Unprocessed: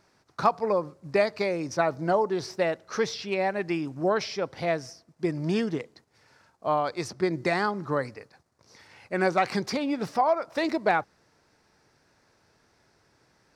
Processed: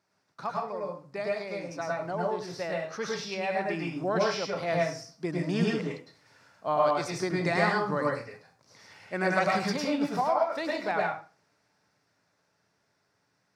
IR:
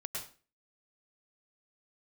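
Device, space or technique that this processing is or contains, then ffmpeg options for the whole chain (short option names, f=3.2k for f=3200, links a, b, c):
far laptop microphone: -filter_complex "[1:a]atrim=start_sample=2205[a];[0:a][a]afir=irnorm=-1:irlink=0,highpass=120,dynaudnorm=f=200:g=31:m=12dB,equalizer=f=380:t=o:w=0.84:g=-3.5,volume=-8dB"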